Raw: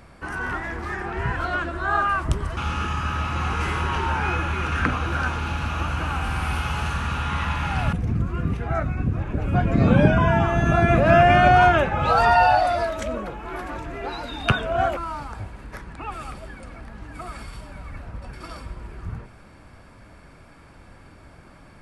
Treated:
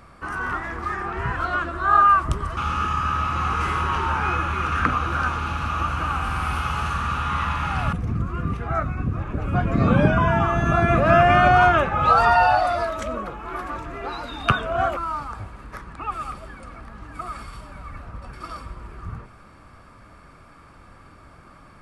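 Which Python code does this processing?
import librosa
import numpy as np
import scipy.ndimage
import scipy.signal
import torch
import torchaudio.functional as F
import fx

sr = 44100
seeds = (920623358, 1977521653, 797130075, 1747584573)

y = fx.peak_eq(x, sr, hz=1200.0, db=10.5, octaves=0.3)
y = y * 10.0 ** (-1.5 / 20.0)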